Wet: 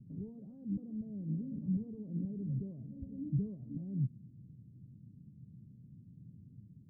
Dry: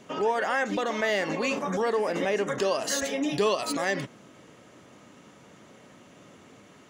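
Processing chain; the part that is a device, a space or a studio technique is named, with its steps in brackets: the neighbour's flat through the wall (low-pass 170 Hz 24 dB/octave; peaking EQ 120 Hz +5 dB 0.82 oct); trim +4.5 dB

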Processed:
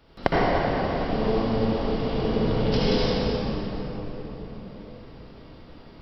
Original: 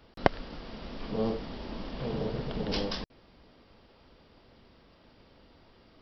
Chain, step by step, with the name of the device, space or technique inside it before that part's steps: cathedral (reverberation RT60 4.7 s, pre-delay 58 ms, DRR -9 dB)

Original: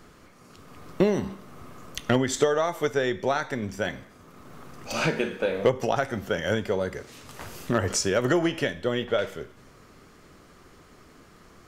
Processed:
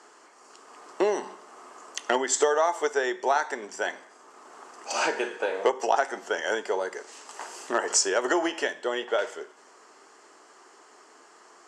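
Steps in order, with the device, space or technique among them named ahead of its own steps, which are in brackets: phone speaker on a table (cabinet simulation 400–8500 Hz, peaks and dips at 530 Hz -8 dB, 880 Hz +5 dB, 1.3 kHz -3 dB, 2.3 kHz -7 dB, 3.7 kHz -9 dB, 7.7 kHz +6 dB); trim +3.5 dB

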